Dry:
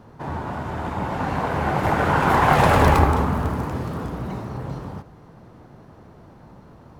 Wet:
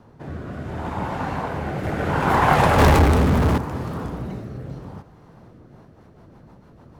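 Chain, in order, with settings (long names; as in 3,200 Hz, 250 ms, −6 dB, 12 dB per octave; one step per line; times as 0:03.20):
rotating-speaker cabinet horn 0.7 Hz, later 6.7 Hz, at 0:05.32
0:02.78–0:03.58: power curve on the samples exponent 0.5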